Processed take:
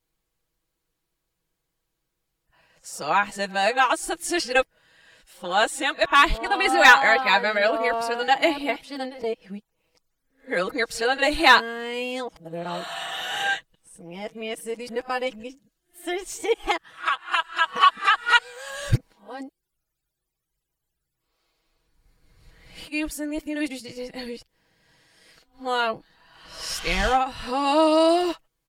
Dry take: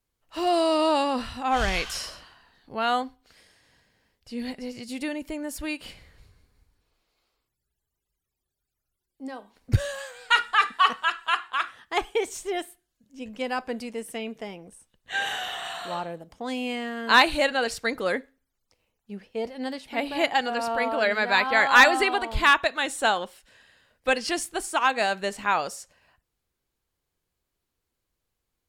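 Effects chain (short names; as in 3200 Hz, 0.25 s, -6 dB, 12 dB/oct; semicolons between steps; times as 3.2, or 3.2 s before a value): whole clip reversed; comb 6.2 ms, depth 58%; gain +1 dB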